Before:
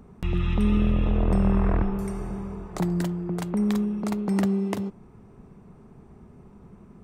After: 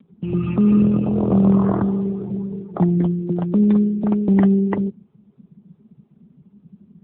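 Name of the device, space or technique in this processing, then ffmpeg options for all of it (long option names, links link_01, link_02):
mobile call with aggressive noise cancelling: -af "highpass=frequency=120:width=0.5412,highpass=frequency=120:width=1.3066,afftdn=noise_reduction=20:noise_floor=-34,volume=9dB" -ar 8000 -c:a libopencore_amrnb -b:a 7950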